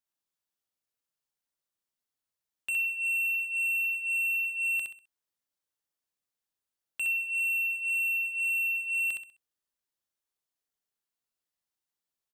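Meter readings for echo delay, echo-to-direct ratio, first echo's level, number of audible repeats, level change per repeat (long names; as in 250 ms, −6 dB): 65 ms, −3.5 dB, −4.0 dB, 4, −10.0 dB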